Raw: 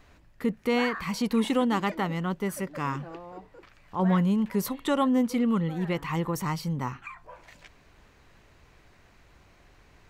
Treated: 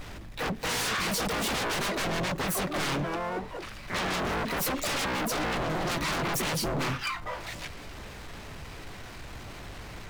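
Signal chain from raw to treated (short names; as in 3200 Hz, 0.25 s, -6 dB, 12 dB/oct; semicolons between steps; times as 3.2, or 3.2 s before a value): harmoniser +4 st -6 dB, +12 st -5 dB; power-law curve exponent 0.7; wavefolder -25 dBFS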